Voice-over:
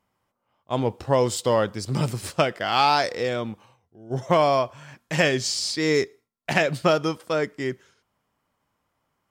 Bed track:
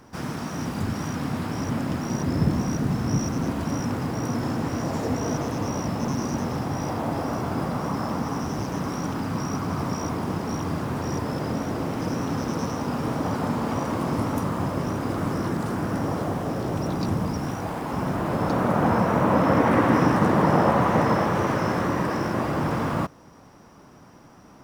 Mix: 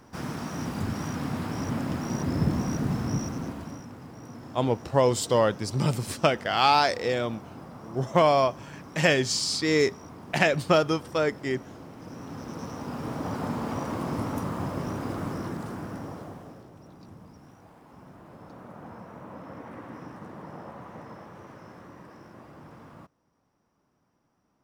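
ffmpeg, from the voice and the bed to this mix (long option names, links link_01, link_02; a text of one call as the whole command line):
ffmpeg -i stem1.wav -i stem2.wav -filter_complex "[0:a]adelay=3850,volume=-1dB[link_01];[1:a]volume=8.5dB,afade=type=out:start_time=2.95:duration=0.91:silence=0.211349,afade=type=in:start_time=11.99:duration=1.46:silence=0.266073,afade=type=out:start_time=15.04:duration=1.66:silence=0.125893[link_02];[link_01][link_02]amix=inputs=2:normalize=0" out.wav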